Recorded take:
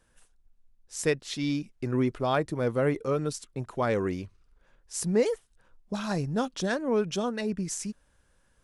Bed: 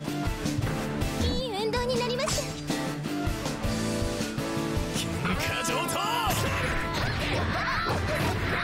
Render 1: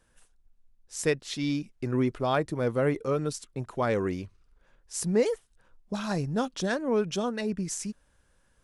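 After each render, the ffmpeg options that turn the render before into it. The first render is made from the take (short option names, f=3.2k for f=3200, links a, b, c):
-af anull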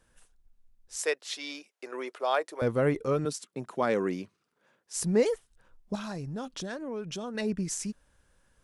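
-filter_complex "[0:a]asettb=1/sr,asplit=3[a][b][c];[a]atrim=end=0.964[d];[b]atrim=start=0.96:end=2.62,asetpts=PTS-STARTPTS,afade=t=in:d=0.004:c=qsin,afade=t=out:st=1.656:d=0.004:c=qsin,highpass=f=460:w=0.5412,highpass=f=460:w=1.3066[e];[c]atrim=start=2.616[f];[d][e]acrossfade=d=0.004:c1=hsin:c2=qsin[g];[g][f]acrossfade=d=0.004:c1=qsin:c2=hsin,asettb=1/sr,asplit=3[h][i][j];[h]atrim=end=3.254[k];[i]atrim=start=3.25:end=4.95,asetpts=PTS-STARTPTS,afade=t=in:d=0.004:c=qsin,afade=t=out:st=1.696:d=0.004:c=qsin,highpass=f=160:w=0.5412,highpass=f=160:w=1.3066[l];[j]atrim=start=4.946[m];[k][l]acrossfade=d=0.004:c1=hsin:c2=qsin[n];[n][m]acrossfade=d=0.004:c1=qsin:c2=hsin,asettb=1/sr,asplit=3[o][p][q];[o]atrim=end=5.954[r];[p]atrim=start=5.95:end=7.35,asetpts=PTS-STARTPTS,afade=t=in:d=0.004:c=qsin,afade=t=out:st=1.396:d=0.004:c=qsin,acompressor=threshold=-35dB:ratio=3:attack=3.2:release=140:knee=1:detection=peak[s];[q]atrim=start=7.346[t];[r][s]acrossfade=d=0.004:c1=hsin:c2=qsin[u];[u][t]acrossfade=d=0.004:c1=qsin:c2=hsin"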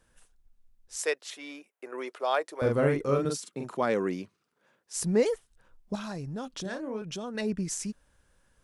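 -filter_complex "[0:a]asettb=1/sr,asplit=3[a][b][c];[a]atrim=end=1.304[d];[b]atrim=start=1.3:end=1.98,asetpts=PTS-STARTPTS,afade=t=in:d=0.004:c=qsin,afade=t=out:st=0.676:d=0.004:c=qsin,equalizer=f=4.8k:t=o:w=1.1:g=-14.5[e];[c]atrim=start=1.976[f];[d][e]acrossfade=d=0.004:c1=hsin:c2=qsin[g];[g][f]acrossfade=d=0.004:c1=qsin:c2=hsin,asettb=1/sr,asplit=3[h][i][j];[h]atrim=end=2.594[k];[i]atrim=start=2.59:end=3.77,asetpts=PTS-STARTPTS,afade=t=in:d=0.004:c=qsin,afade=t=out:st=1.176:d=0.004:c=qsin,asplit=2[l][m];[m]adelay=43,volume=-3dB[n];[l][n]amix=inputs=2:normalize=0,atrim=end_sample=52038[o];[j]atrim=start=3.766[p];[k][o]acrossfade=d=0.004:c1=hsin:c2=qsin[q];[q][p]acrossfade=d=0.004:c1=qsin:c2=hsin,asettb=1/sr,asplit=3[r][s][t];[r]atrim=end=6.624[u];[s]atrim=start=6.62:end=7.02,asetpts=PTS-STARTPTS,afade=t=in:d=0.004:c=qsin,afade=t=out:st=0.396:d=0.004:c=qsin,asplit=2[v][w];[w]adelay=32,volume=-5.5dB[x];[v][x]amix=inputs=2:normalize=0,atrim=end_sample=17640[y];[t]atrim=start=7.016[z];[u][y]acrossfade=d=0.004:c1=hsin:c2=qsin[aa];[aa][z]acrossfade=d=0.004:c1=qsin:c2=hsin"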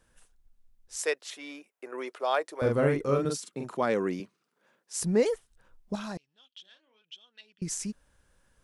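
-filter_complex "[0:a]asettb=1/sr,asplit=3[a][b][c];[a]atrim=end=4.204[d];[b]atrim=start=4.2:end=5.02,asetpts=PTS-STARTPTS,afade=t=in:d=0.004:c=qsin,afade=t=out:st=0.816:d=0.004:c=qsin,highpass=f=150:w=0.5412,highpass=f=150:w=1.3066[e];[c]atrim=start=5.016[f];[d][e]acrossfade=d=0.004:c1=hsin:c2=qsin[g];[g][f]acrossfade=d=0.004:c1=qsin:c2=hsin,asettb=1/sr,asplit=3[h][i][j];[h]atrim=end=6.174[k];[i]atrim=start=6.17:end=7.62,asetpts=PTS-STARTPTS,afade=t=in:d=0.004:c=qsin,afade=t=out:st=1.446:d=0.004:c=qsin,bandpass=f=3.2k:t=q:w=7.7[l];[j]atrim=start=7.616[m];[k][l]acrossfade=d=0.004:c1=hsin:c2=qsin[n];[n][m]acrossfade=d=0.004:c1=qsin:c2=hsin"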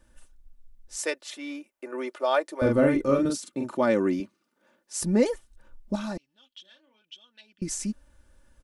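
-af "lowshelf=f=430:g=6.5,aecho=1:1:3.4:0.65"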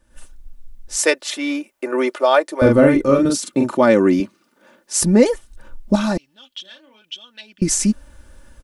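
-af "dynaudnorm=f=100:g=3:m=14dB"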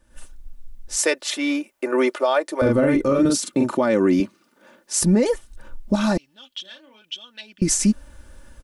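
-af "alimiter=limit=-9.5dB:level=0:latency=1:release=83"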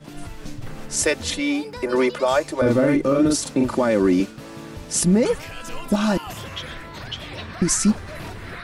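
-filter_complex "[1:a]volume=-7.5dB[a];[0:a][a]amix=inputs=2:normalize=0"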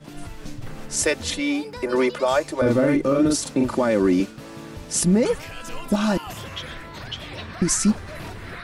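-af "volume=-1dB"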